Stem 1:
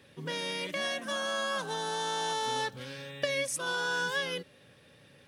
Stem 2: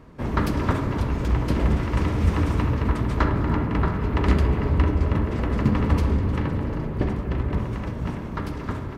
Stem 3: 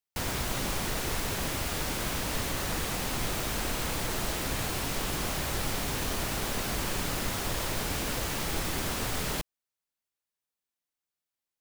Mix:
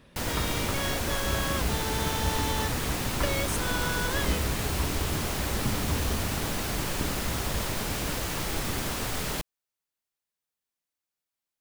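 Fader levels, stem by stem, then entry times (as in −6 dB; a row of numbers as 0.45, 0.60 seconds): −1.5, −11.0, +0.5 decibels; 0.00, 0.00, 0.00 seconds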